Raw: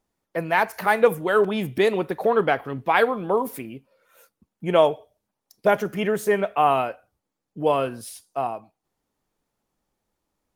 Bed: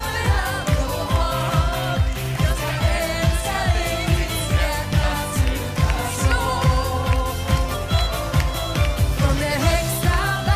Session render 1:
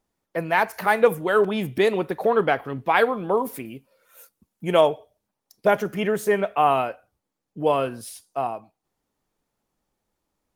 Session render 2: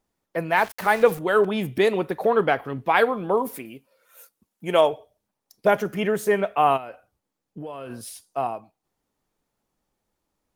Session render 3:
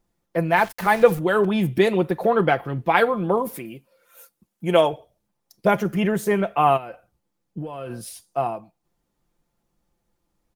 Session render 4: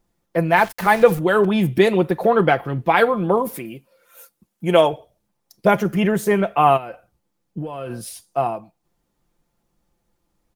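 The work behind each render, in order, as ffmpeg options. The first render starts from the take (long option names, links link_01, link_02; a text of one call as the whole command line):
ffmpeg -i in.wav -filter_complex "[0:a]asettb=1/sr,asplit=3[link_01][link_02][link_03];[link_01]atrim=end=3.654[link_04];[link_02]atrim=start=3.65:end=4.81,asetpts=PTS-STARTPTS,afade=type=in:duration=0.004:curve=qsin,afade=type=out:start_time=1.156:duration=0.004:curve=qsin,aemphasis=mode=production:type=cd[link_05];[link_03]atrim=start=4.806[link_06];[link_04][link_05]acrossfade=duration=0.004:curve1=hsin:curve2=qsin[link_07];[link_07][link_06]acrossfade=duration=0.004:curve1=qsin:curve2=hsin" out.wav
ffmpeg -i in.wav -filter_complex "[0:a]asettb=1/sr,asplit=3[link_01][link_02][link_03];[link_01]atrim=end=0.564[link_04];[link_02]atrim=start=0.56:end=1.19,asetpts=PTS-STARTPTS,afade=type=in:duration=0.004:curve=qsin,afade=type=out:start_time=0.626:duration=0.004:curve=qsin,aeval=exprs='val(0)*gte(abs(val(0)),0.0188)':channel_layout=same[link_05];[link_03]atrim=start=1.186[link_06];[link_04][link_05]acrossfade=duration=0.004:curve1=hsin:curve2=qsin[link_07];[link_07][link_06]acrossfade=duration=0.004:curve1=qsin:curve2=hsin,asettb=1/sr,asplit=3[link_08][link_09][link_10];[link_08]atrim=end=3.584[link_11];[link_09]atrim=start=3.58:end=4.93,asetpts=PTS-STARTPTS,afade=type=in:duration=0.004:curve=qsin,afade=type=out:start_time=1.346:duration=0.004:curve=qsin,lowshelf=frequency=180:gain=-10[link_12];[link_10]atrim=start=4.926[link_13];[link_11][link_12]acrossfade=duration=0.004:curve1=hsin:curve2=qsin[link_14];[link_14][link_13]acrossfade=duration=0.004:curve1=qsin:curve2=hsin,asplit=3[link_15][link_16][link_17];[link_15]afade=type=out:start_time=6.76:duration=0.02[link_18];[link_16]acompressor=threshold=-31dB:ratio=16:attack=3.2:release=140:knee=1:detection=peak,afade=type=in:start_time=6.76:duration=0.02,afade=type=out:start_time=7.89:duration=0.02[link_19];[link_17]afade=type=in:start_time=7.89:duration=0.02[link_20];[link_18][link_19][link_20]amix=inputs=3:normalize=0" out.wav
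ffmpeg -i in.wav -af "lowshelf=frequency=210:gain=8.5,aecho=1:1:5.8:0.42" out.wav
ffmpeg -i in.wav -af "volume=3dB,alimiter=limit=-2dB:level=0:latency=1" out.wav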